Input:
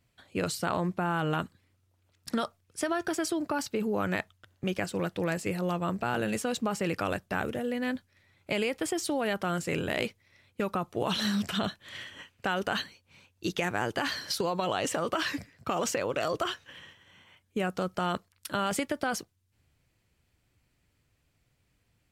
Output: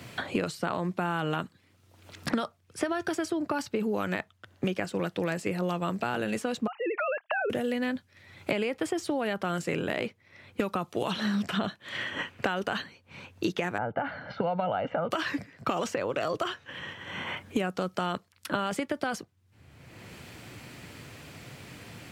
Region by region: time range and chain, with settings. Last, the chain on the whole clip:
6.67–7.50 s: formants replaced by sine waves + compression 4:1, threshold -33 dBFS
13.78–15.11 s: Bessel low-pass 1.1 kHz, order 4 + comb 1.4 ms, depth 71%
whole clip: high-pass 110 Hz; treble shelf 6 kHz -7.5 dB; three bands compressed up and down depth 100%

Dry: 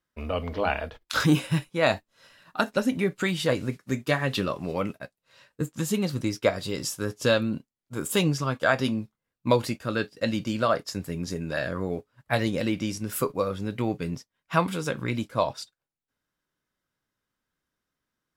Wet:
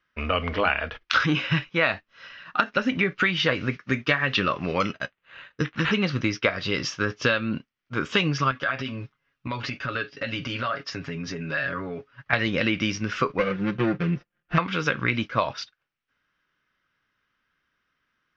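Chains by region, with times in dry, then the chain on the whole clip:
4.80–5.94 s: low-pass 9 kHz 24 dB/octave + careless resampling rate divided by 8×, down none, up hold
8.51–12.33 s: comb 7.2 ms, depth 79% + compression 5:1, threshold -33 dBFS
13.38–14.58 s: median filter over 41 samples + treble shelf 7 kHz -10.5 dB + comb 5.7 ms, depth 85%
whole clip: high-order bell 1.9 kHz +10 dB; compression 6:1, threshold -22 dBFS; steep low-pass 6.1 kHz 72 dB/octave; trim +3.5 dB

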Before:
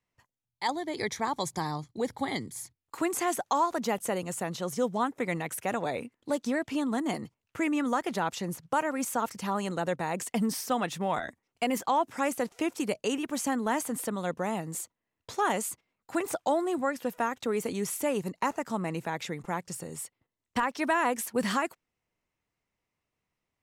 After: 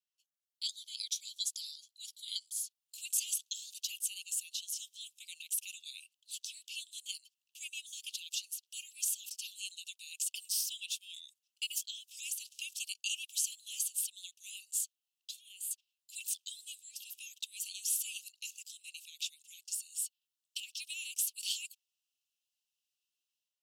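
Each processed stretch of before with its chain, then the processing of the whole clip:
15.31–15.71 s: compression 12:1, threshold -33 dBFS + peaking EQ 5.8 kHz -15 dB 0.72 oct
whole clip: steep high-pass 2.7 kHz 96 dB/octave; level rider gain up to 8.5 dB; trim -5.5 dB

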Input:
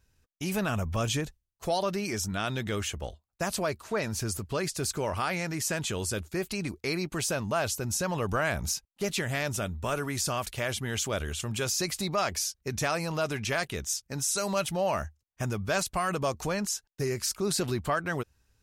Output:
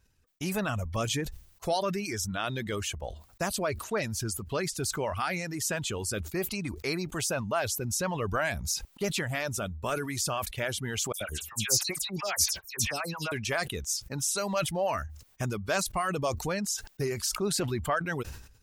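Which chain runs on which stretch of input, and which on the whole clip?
11.12–13.32 s: treble shelf 4.5 kHz +10.5 dB + harmonic tremolo 7.4 Hz, depth 100%, crossover 750 Hz + phase dispersion lows, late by 88 ms, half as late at 2.8 kHz
whole clip: reverb removal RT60 1.2 s; decay stretcher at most 79 dB/s

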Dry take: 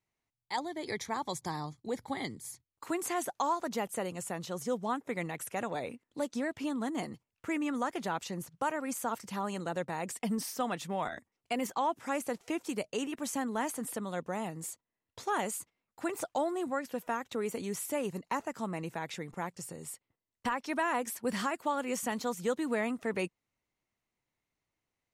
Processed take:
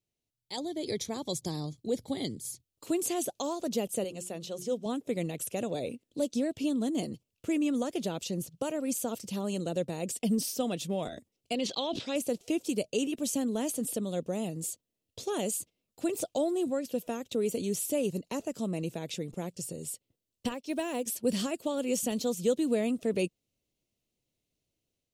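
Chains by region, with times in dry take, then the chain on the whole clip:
4.04–4.86 s: low-pass 1.9 kHz 6 dB/octave + tilt EQ +2.5 dB/octave + hum notches 60/120/180/240/300/360 Hz
11.55–12.16 s: resonant low-pass 4 kHz, resonance Q 4.4 + bass shelf 380 Hz -5.5 dB + decay stretcher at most 110 dB/s
20.54–21.06 s: block-companded coder 7-bit + peaking EQ 1.3 kHz -4 dB 0.32 oct + upward expansion, over -48 dBFS
whole clip: level rider gain up to 5 dB; high-order bell 1.3 kHz -15.5 dB

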